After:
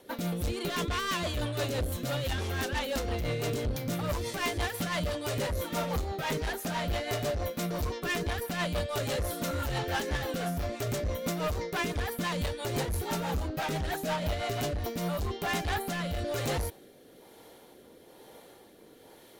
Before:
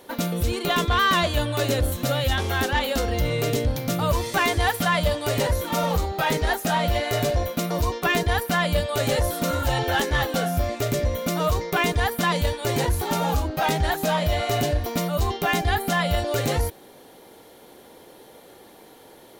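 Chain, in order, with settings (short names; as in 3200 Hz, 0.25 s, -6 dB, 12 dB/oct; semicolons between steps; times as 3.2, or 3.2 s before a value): overloaded stage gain 23 dB; rotary speaker horn 6 Hz, later 1.1 Hz, at 14.51; gain -3.5 dB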